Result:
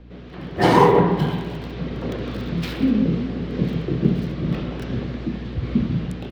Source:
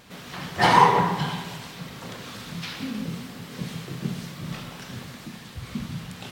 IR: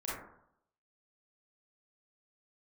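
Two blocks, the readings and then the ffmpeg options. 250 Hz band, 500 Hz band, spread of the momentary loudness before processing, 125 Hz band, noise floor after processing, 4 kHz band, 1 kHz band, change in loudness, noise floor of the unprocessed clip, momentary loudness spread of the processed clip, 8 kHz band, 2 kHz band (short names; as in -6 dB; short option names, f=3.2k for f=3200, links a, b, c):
+11.0 dB, +10.0 dB, 20 LU, +9.0 dB, -38 dBFS, -2.0 dB, -1.0 dB, +3.5 dB, -43 dBFS, 14 LU, n/a, -1.5 dB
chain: -filter_complex "[0:a]firequalizer=gain_entry='entry(180,0);entry(330,7);entry(880,-8)':delay=0.05:min_phase=1,aeval=exprs='val(0)+0.00708*(sin(2*PI*60*n/s)+sin(2*PI*2*60*n/s)/2+sin(2*PI*3*60*n/s)/3+sin(2*PI*4*60*n/s)/4+sin(2*PI*5*60*n/s)/5)':c=same,acrossover=split=210|1700|4400[a][b][c][d];[d]aeval=exprs='val(0)*gte(abs(val(0)),0.00398)':c=same[e];[a][b][c][e]amix=inputs=4:normalize=0,dynaudnorm=f=380:g=3:m=10.5dB"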